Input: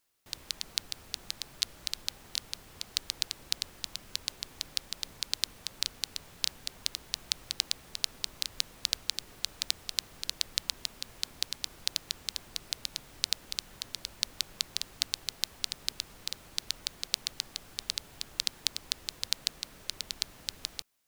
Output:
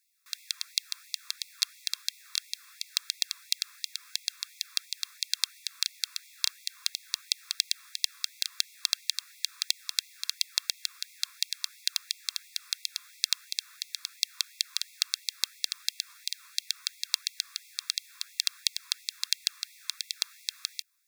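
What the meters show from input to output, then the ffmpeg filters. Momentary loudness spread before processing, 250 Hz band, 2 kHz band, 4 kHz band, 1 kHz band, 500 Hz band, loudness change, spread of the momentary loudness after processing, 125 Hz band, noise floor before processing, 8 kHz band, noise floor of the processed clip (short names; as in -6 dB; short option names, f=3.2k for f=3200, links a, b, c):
7 LU, under -40 dB, +2.5 dB, +2.5 dB, -4.0 dB, under -40 dB, +2.5 dB, 7 LU, under -40 dB, -54 dBFS, +3.0 dB, -55 dBFS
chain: -af "asuperstop=centerf=3000:order=12:qfactor=6.3,afftfilt=real='re*gte(b*sr/1024,970*pow(2000/970,0.5+0.5*sin(2*PI*2.9*pts/sr)))':imag='im*gte(b*sr/1024,970*pow(2000/970,0.5+0.5*sin(2*PI*2.9*pts/sr)))':win_size=1024:overlap=0.75,volume=3dB"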